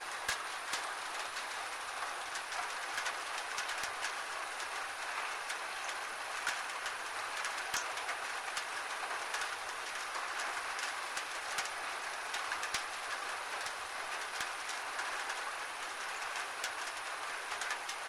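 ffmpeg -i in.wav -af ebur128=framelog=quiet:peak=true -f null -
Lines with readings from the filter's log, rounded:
Integrated loudness:
  I:         -38.3 LUFS
  Threshold: -48.3 LUFS
Loudness range:
  LRA:         1.0 LU
  Threshold: -58.2 LUFS
  LRA low:   -38.8 LUFS
  LRA high:  -37.8 LUFS
True peak:
  Peak:      -22.4 dBFS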